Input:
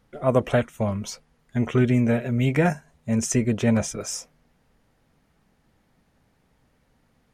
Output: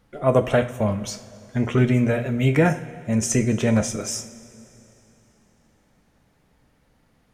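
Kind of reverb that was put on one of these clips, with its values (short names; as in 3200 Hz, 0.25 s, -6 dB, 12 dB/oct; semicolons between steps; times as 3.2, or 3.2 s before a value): two-slope reverb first 0.39 s, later 3.3 s, from -17 dB, DRR 8 dB; gain +2 dB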